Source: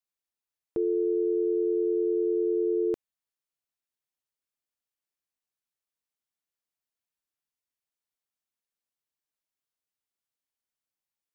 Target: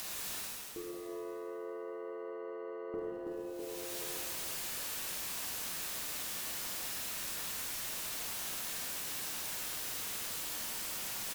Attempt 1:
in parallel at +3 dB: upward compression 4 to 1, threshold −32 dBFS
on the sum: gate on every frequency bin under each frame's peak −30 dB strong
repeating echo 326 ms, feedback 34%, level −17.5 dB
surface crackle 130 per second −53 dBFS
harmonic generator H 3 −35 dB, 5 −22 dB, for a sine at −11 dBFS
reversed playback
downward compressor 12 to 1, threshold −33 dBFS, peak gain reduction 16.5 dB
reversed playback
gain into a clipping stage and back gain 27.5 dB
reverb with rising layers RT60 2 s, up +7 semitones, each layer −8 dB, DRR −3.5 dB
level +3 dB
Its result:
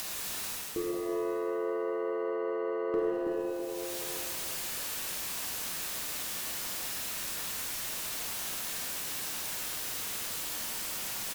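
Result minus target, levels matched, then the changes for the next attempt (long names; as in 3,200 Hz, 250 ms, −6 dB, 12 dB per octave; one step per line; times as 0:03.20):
downward compressor: peak gain reduction −10 dB
change: downward compressor 12 to 1, threshold −44 dBFS, peak gain reduction 26.5 dB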